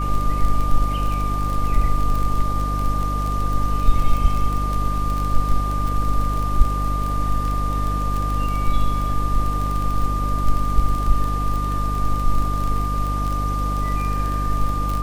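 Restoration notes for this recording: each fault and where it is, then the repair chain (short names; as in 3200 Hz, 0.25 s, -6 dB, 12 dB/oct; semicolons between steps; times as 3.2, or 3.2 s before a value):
crackle 25/s -22 dBFS
hum 50 Hz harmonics 6 -23 dBFS
tone 1200 Hz -25 dBFS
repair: de-click; notch 1200 Hz, Q 30; de-hum 50 Hz, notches 6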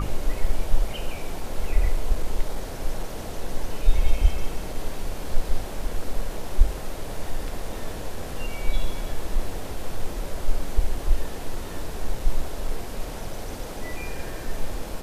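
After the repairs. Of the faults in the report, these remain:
none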